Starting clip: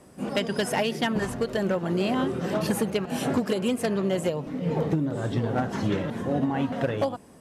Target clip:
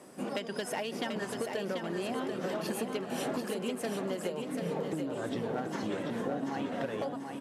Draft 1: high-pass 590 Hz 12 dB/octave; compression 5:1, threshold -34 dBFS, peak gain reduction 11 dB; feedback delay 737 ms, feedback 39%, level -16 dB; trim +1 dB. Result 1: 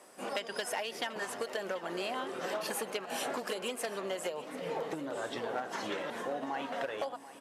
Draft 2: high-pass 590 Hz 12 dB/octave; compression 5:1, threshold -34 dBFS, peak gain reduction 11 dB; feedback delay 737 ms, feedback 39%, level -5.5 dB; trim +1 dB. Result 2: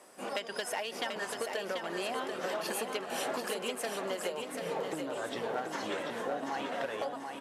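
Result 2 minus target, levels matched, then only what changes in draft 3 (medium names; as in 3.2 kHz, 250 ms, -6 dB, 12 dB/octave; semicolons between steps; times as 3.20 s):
250 Hz band -6.5 dB
change: high-pass 230 Hz 12 dB/octave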